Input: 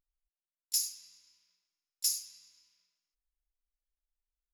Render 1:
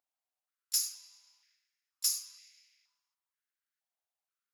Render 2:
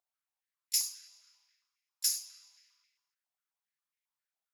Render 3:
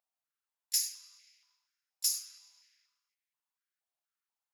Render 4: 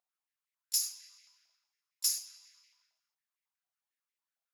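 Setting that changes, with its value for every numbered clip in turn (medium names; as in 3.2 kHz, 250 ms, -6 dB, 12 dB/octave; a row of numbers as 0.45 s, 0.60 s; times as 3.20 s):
step-sequenced high-pass, rate: 2.1 Hz, 7.4 Hz, 4.2 Hz, 11 Hz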